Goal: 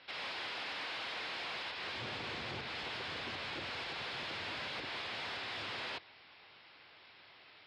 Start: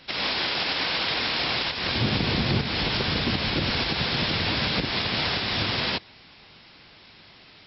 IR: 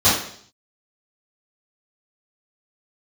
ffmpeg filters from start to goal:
-af "equalizer=f=190:t=o:w=1.6:g=-14.5,asoftclip=type=tanh:threshold=-31.5dB,highpass=130,lowpass=3.2k,volume=-5dB"

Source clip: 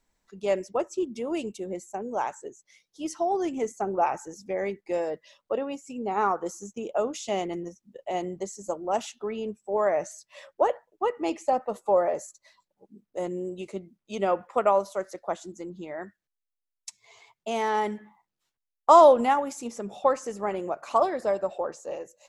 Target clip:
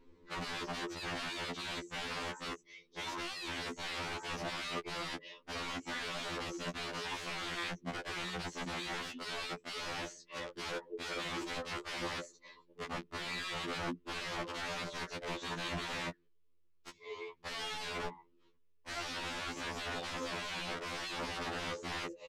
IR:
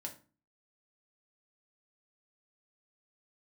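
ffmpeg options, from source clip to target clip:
-af "firequalizer=gain_entry='entry(120,0);entry(410,13);entry(700,-17);entry(1000,-2);entry(1500,-9);entry(2700,-3);entry(9300,-16)':delay=0.05:min_phase=1,alimiter=level_in=8dB:limit=-24dB:level=0:latency=1:release=88,volume=-8dB,aeval=exprs='(mod(168*val(0)+1,2)-1)/168':c=same,adynamicsmooth=sensitivity=4:basefreq=4.1k,afftfilt=real='re*2*eq(mod(b,4),0)':imag='im*2*eq(mod(b,4),0)':win_size=2048:overlap=0.75,volume=15dB"

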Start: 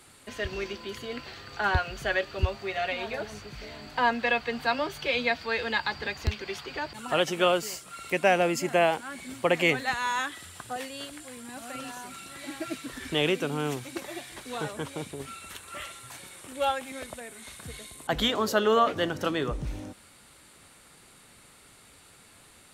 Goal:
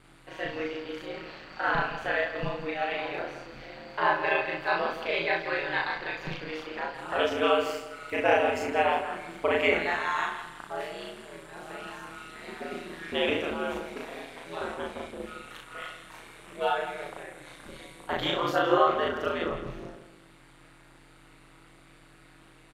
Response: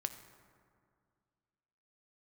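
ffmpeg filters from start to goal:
-filter_complex "[0:a]asplit=2[a][b];[b]adelay=163,lowpass=f=4.9k:p=1,volume=-10dB,asplit=2[c][d];[d]adelay=163,lowpass=f=4.9k:p=1,volume=0.34,asplit=2[e][f];[f]adelay=163,lowpass=f=4.9k:p=1,volume=0.34,asplit=2[g][h];[h]adelay=163,lowpass=f=4.9k:p=1,volume=0.34[i];[c][e][g][i]amix=inputs=4:normalize=0[j];[a][j]amix=inputs=2:normalize=0,aeval=exprs='val(0)+0.00355*(sin(2*PI*50*n/s)+sin(2*PI*2*50*n/s)/2+sin(2*PI*3*50*n/s)/3+sin(2*PI*4*50*n/s)/4+sin(2*PI*5*50*n/s)/5)':c=same,asplit=2[k][l];[l]aecho=0:1:36|64:0.531|0.447[m];[k][m]amix=inputs=2:normalize=0,aeval=exprs='val(0)*sin(2*PI*80*n/s)':c=same,bass=f=250:g=-9,treble=f=4k:g=-13,asplit=2[n][o];[o]adelay=36,volume=-6dB[p];[n][p]amix=inputs=2:normalize=0"

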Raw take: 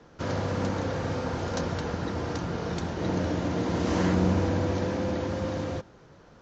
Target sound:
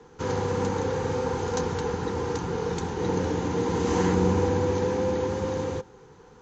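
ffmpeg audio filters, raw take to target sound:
-af "superequalizer=7b=2.24:8b=0.355:9b=1.78:15b=2"

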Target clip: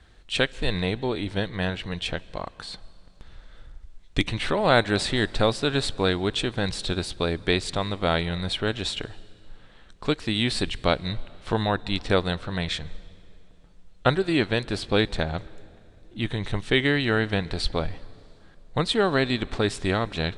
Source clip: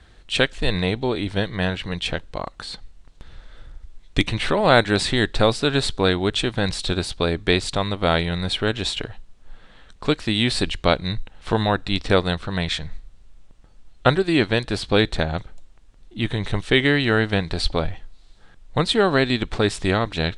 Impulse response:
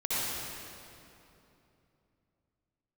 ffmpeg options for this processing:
-filter_complex "[0:a]asplit=2[a][b];[1:a]atrim=start_sample=2205,adelay=68[c];[b][c]afir=irnorm=-1:irlink=0,volume=-31dB[d];[a][d]amix=inputs=2:normalize=0,volume=-4dB"

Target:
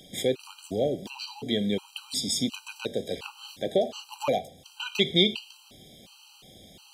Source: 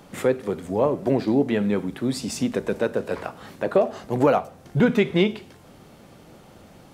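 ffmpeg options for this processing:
-af "highshelf=f=2.3k:t=q:w=3:g=10.5,afftfilt=real='re*gt(sin(2*PI*1.4*pts/sr)*(1-2*mod(floor(b*sr/1024/790),2)),0)':imag='im*gt(sin(2*PI*1.4*pts/sr)*(1-2*mod(floor(b*sr/1024/790),2)),0)':win_size=1024:overlap=0.75,volume=-4.5dB"

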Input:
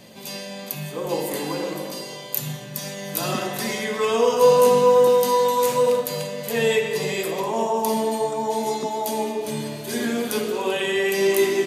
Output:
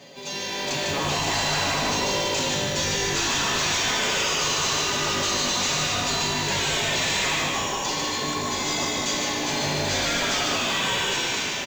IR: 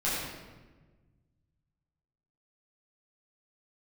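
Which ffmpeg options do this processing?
-filter_complex "[0:a]afftfilt=real='re*lt(hypot(re,im),0.398)':imag='im*lt(hypot(re,im),0.398)':win_size=1024:overlap=0.75,highpass=f=290:p=1,afftfilt=real='re*lt(hypot(re,im),0.0891)':imag='im*lt(hypot(re,im),0.0891)':win_size=1024:overlap=0.75,aecho=1:1:7.2:0.76,dynaudnorm=f=170:g=7:m=16dB,aresample=16000,asoftclip=type=hard:threshold=-24dB,aresample=44100,acrusher=bits=5:mode=log:mix=0:aa=0.000001,asplit=2[a][b];[b]asplit=6[c][d][e][f][g][h];[c]adelay=150,afreqshift=-53,volume=-3.5dB[i];[d]adelay=300,afreqshift=-106,volume=-9.9dB[j];[e]adelay=450,afreqshift=-159,volume=-16.3dB[k];[f]adelay=600,afreqshift=-212,volume=-22.6dB[l];[g]adelay=750,afreqshift=-265,volume=-29dB[m];[h]adelay=900,afreqshift=-318,volume=-35.4dB[n];[i][j][k][l][m][n]amix=inputs=6:normalize=0[o];[a][o]amix=inputs=2:normalize=0"

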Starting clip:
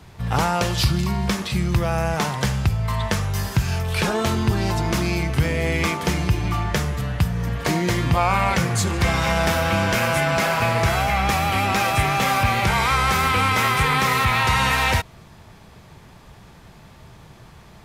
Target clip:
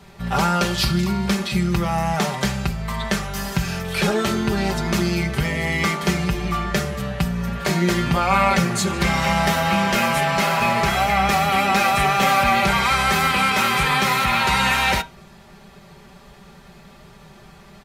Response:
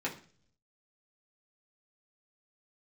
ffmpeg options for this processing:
-filter_complex "[0:a]aecho=1:1:5.1:0.71,asplit=2[a][b];[1:a]atrim=start_sample=2205,asetrate=74970,aresample=44100[c];[b][c]afir=irnorm=-1:irlink=0,volume=-5.5dB[d];[a][d]amix=inputs=2:normalize=0,volume=-2.5dB"

